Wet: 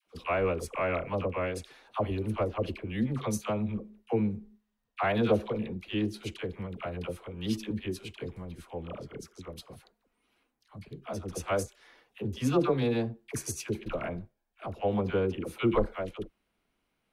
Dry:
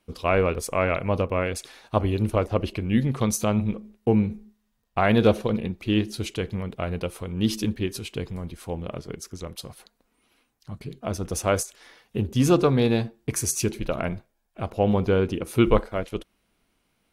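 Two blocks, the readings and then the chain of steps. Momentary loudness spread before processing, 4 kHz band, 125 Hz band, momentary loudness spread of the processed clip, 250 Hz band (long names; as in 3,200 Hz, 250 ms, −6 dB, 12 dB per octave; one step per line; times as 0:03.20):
15 LU, −8.0 dB, −9.0 dB, 15 LU, −7.5 dB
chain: bass and treble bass −3 dB, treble −6 dB
all-pass dispersion lows, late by 69 ms, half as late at 710 Hz
level −6 dB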